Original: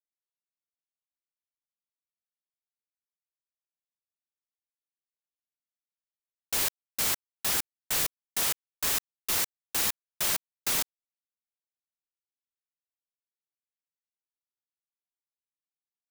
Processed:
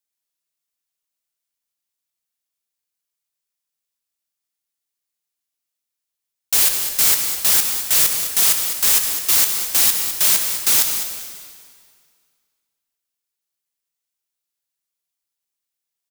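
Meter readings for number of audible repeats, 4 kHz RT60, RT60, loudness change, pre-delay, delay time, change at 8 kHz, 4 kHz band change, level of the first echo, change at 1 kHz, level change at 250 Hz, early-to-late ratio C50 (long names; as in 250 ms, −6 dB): 1, 1.9 s, 2.0 s, +13.5 dB, 5 ms, 205 ms, +14.0 dB, +11.5 dB, −10.5 dB, +6.5 dB, +5.5 dB, 4.5 dB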